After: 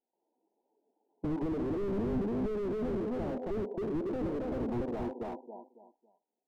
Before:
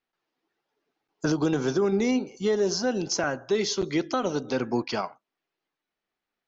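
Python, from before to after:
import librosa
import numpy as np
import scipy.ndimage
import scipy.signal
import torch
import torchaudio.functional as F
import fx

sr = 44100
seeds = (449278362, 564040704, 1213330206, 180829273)

p1 = fx.peak_eq(x, sr, hz=470.0, db=2.0, octaves=0.85)
p2 = fx.level_steps(p1, sr, step_db=21)
p3 = p1 + (p2 * librosa.db_to_amplitude(0.5))
p4 = fx.brickwall_bandpass(p3, sr, low_hz=180.0, high_hz=1000.0)
p5 = fx.echo_feedback(p4, sr, ms=276, feedback_pct=28, wet_db=-5.5)
p6 = fx.slew_limit(p5, sr, full_power_hz=12.0)
y = p6 * librosa.db_to_amplitude(-2.5)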